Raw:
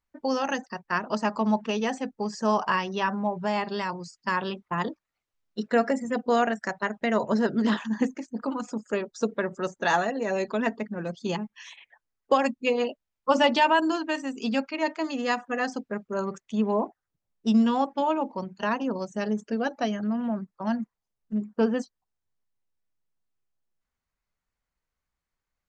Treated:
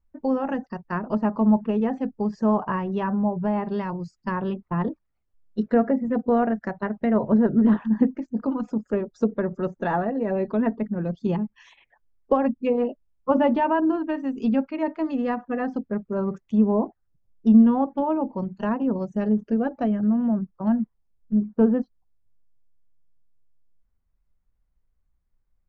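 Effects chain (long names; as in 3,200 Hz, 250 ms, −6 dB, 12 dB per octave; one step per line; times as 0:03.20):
treble cut that deepens with the level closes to 1,900 Hz, closed at −22.5 dBFS
spectral tilt −4 dB per octave
level −2 dB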